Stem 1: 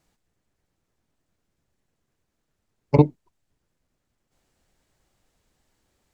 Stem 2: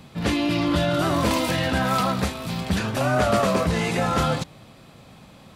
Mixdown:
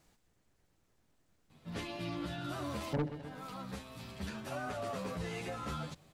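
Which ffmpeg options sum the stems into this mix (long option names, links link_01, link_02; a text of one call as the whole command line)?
ffmpeg -i stem1.wav -i stem2.wav -filter_complex "[0:a]asoftclip=type=tanh:threshold=-20.5dB,volume=2dB,asplit=3[link_01][link_02][link_03];[link_02]volume=-16dB[link_04];[1:a]asplit=2[link_05][link_06];[link_06]adelay=10.2,afreqshift=0.67[link_07];[link_05][link_07]amix=inputs=2:normalize=1,adelay=1500,volume=-13.5dB[link_08];[link_03]apad=whole_len=311393[link_09];[link_08][link_09]sidechaincompress=threshold=-36dB:ratio=8:attack=16:release=884[link_10];[link_04]aecho=0:1:129|258|387|516|645|774:1|0.44|0.194|0.0852|0.0375|0.0165[link_11];[link_01][link_10][link_11]amix=inputs=3:normalize=0,alimiter=level_in=5dB:limit=-24dB:level=0:latency=1:release=326,volume=-5dB" out.wav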